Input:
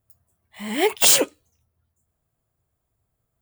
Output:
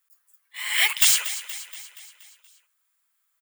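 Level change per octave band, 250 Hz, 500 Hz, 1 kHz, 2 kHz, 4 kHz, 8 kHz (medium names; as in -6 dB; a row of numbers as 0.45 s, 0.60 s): under -40 dB, under -25 dB, -8.5 dB, +4.5 dB, 0.0 dB, -2.5 dB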